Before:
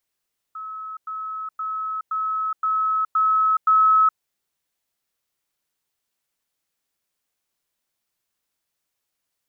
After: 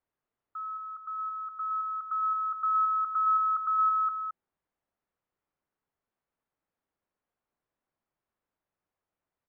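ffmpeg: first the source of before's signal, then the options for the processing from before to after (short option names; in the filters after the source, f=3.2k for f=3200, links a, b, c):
-f lavfi -i "aevalsrc='pow(10,(-30.5+3*floor(t/0.52))/20)*sin(2*PI*1290*t)*clip(min(mod(t,0.52),0.42-mod(t,0.52))/0.005,0,1)':d=3.64:s=44100"
-af "lowpass=1.3k,alimiter=limit=-20.5dB:level=0:latency=1:release=128,aecho=1:1:219:0.299"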